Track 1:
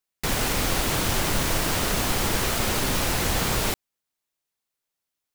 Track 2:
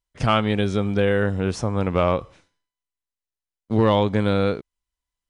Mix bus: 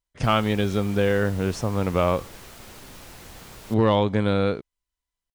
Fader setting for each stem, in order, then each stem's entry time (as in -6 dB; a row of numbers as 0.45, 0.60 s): -19.5, -1.5 dB; 0.00, 0.00 s